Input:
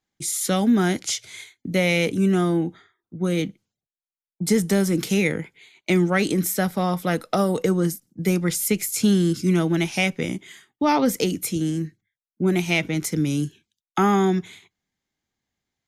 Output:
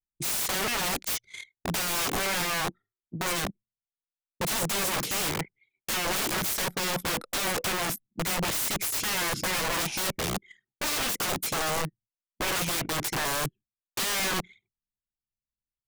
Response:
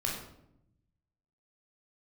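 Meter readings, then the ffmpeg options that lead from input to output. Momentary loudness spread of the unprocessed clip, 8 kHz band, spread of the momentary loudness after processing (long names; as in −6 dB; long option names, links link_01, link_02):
10 LU, 0.0 dB, 7 LU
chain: -af "aeval=exprs='(mod(15*val(0)+1,2)-1)/15':channel_layout=same,anlmdn=1"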